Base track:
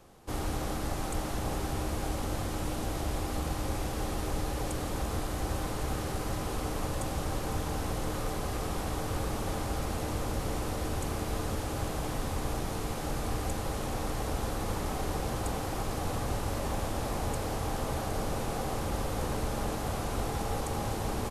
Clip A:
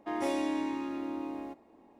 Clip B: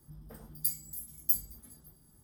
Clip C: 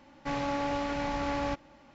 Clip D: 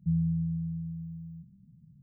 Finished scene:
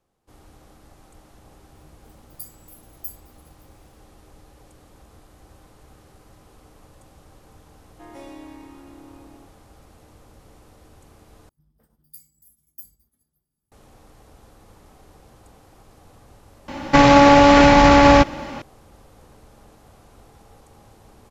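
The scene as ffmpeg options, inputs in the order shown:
-filter_complex "[2:a]asplit=2[a][b];[0:a]volume=-17.5dB[c];[b]agate=range=-7dB:threshold=-50dB:ratio=3:release=50:detection=peak[d];[3:a]alimiter=level_in=25dB:limit=-1dB:release=50:level=0:latency=1[e];[c]asplit=2[f][g];[f]atrim=end=11.494[h];[d]atrim=end=2.23,asetpts=PTS-STARTPTS,volume=-13.5dB[i];[g]atrim=start=13.716[j];[a]atrim=end=2.23,asetpts=PTS-STARTPTS,volume=-7dB,afade=t=in:d=0.004:c=hsin,afade=t=out:st=2.226:d=0.004:c=hsin,adelay=1750[k];[1:a]atrim=end=1.99,asetpts=PTS-STARTPTS,volume=-9.5dB,afade=t=in:d=0.004:c=hsin,afade=t=out:st=1.986:d=0.004:c=hsin,adelay=7930[l];[e]atrim=end=1.94,asetpts=PTS-STARTPTS,volume=-1dB,afade=t=in:d=0.004:c=hsin,afade=t=out:st=1.936:d=0.004:c=hsin,adelay=735588S[m];[h][i]acrossfade=d=0.004:c1=hsin:c2=hsin[n];[n][j]acrossfade=d=0.004:c1=hsin:c2=hsin[o];[o][k][l][m]amix=inputs=4:normalize=0"

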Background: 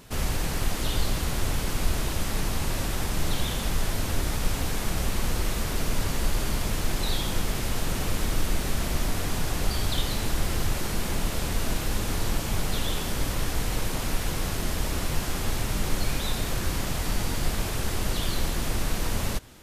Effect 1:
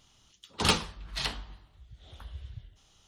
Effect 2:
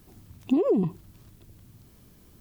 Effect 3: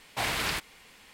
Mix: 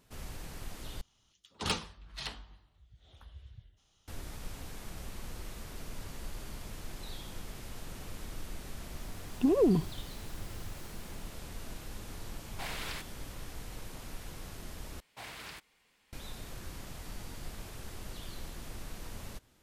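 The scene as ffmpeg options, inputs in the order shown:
-filter_complex "[3:a]asplit=2[a][b];[0:a]volume=-16.5dB[c];[2:a]dynaudnorm=f=110:g=9:m=11.5dB[d];[c]asplit=3[e][f][g];[e]atrim=end=1.014[h];[1:a]atrim=end=3.07,asetpts=PTS-STARTPTS,volume=-8dB[i];[f]atrim=start=4.076:end=15.004[j];[b]atrim=end=1.13,asetpts=PTS-STARTPTS,volume=-16dB[k];[g]atrim=start=16.126[l];[d]atrim=end=2.4,asetpts=PTS-STARTPTS,volume=-11.5dB,afade=t=in:d=0.004:c=hsin,afade=t=out:st=2.396:d=0.004:c=hsin,adelay=8920[m];[a]atrim=end=1.13,asetpts=PTS-STARTPTS,volume=-11dB,afade=t=in:d=0.004:c=hsin,afade=t=out:st=1.126:d=0.004:c=hsin,adelay=12420[n];[h][i]acrossfade=d=0.004:c1=hsin:c2=hsin[o];[o][j]acrossfade=d=0.004:c1=hsin:c2=hsin[p];[p][k]acrossfade=d=0.004:c1=hsin:c2=hsin[q];[q][l]acrossfade=d=0.004:c1=hsin:c2=hsin[r];[r][m][n]amix=inputs=3:normalize=0"

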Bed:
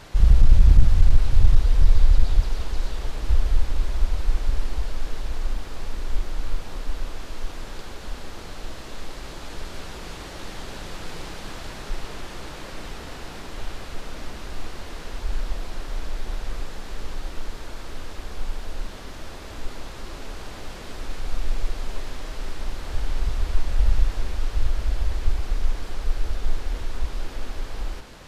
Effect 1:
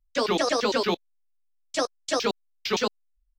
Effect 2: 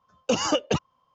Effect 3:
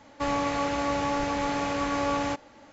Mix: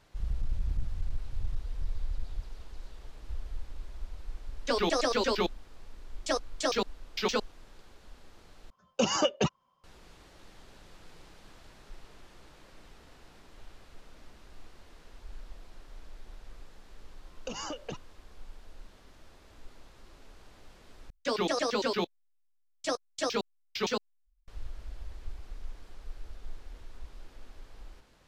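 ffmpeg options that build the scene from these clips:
-filter_complex "[1:a]asplit=2[a][b];[2:a]asplit=2[c][d];[0:a]volume=-18.5dB[e];[c]aecho=1:1:5.2:0.38[f];[d]acompressor=threshold=-29dB:ratio=6:attack=3.2:release=140:knee=1:detection=peak[g];[b]lowshelf=f=120:g=6[h];[e]asplit=3[i][j][k];[i]atrim=end=8.704[l];[f]atrim=end=1.14,asetpts=PTS-STARTPTS,volume=-3.5dB[m];[j]atrim=start=9.836:end=21.104[n];[h]atrim=end=3.38,asetpts=PTS-STARTPTS,volume=-6dB[o];[k]atrim=start=24.476[p];[a]atrim=end=3.38,asetpts=PTS-STARTPTS,volume=-4dB,afade=t=in:d=0.004:c=hsin,afade=t=out:st=3.376:d=0.004:c=hsin,adelay=4520[q];[g]atrim=end=1.14,asetpts=PTS-STARTPTS,volume=-5.5dB,afade=t=in:d=0.004:c=hsin,afade=t=out:st=1.136:d=0.004:c=hsin,adelay=17180[r];[l][m]acrossfade=d=0.004:c1=hsin:c2=hsin[s];[s][n]acrossfade=d=0.004:c1=hsin:c2=hsin[t];[t][o]acrossfade=d=0.004:c1=hsin:c2=hsin[u];[u][p]acrossfade=d=0.004:c1=hsin:c2=hsin[v];[v][q][r]amix=inputs=3:normalize=0"

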